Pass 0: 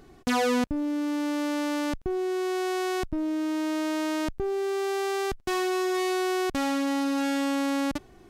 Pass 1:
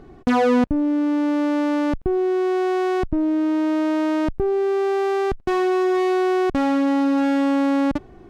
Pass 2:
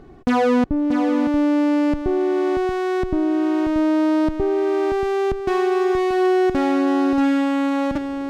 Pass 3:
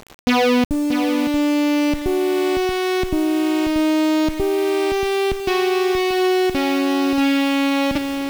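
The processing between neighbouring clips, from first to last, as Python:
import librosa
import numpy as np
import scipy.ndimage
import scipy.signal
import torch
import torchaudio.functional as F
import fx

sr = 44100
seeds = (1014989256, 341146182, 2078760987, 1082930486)

y1 = fx.lowpass(x, sr, hz=1100.0, slope=6)
y1 = F.gain(torch.from_numpy(y1), 8.5).numpy()
y2 = y1 + 10.0 ** (-7.5 / 20.0) * np.pad(y1, (int(633 * sr / 1000.0), 0))[:len(y1)]
y3 = fx.rider(y2, sr, range_db=10, speed_s=2.0)
y3 = fx.band_shelf(y3, sr, hz=3600.0, db=11.0, octaves=1.7)
y3 = fx.quant_dither(y3, sr, seeds[0], bits=6, dither='none')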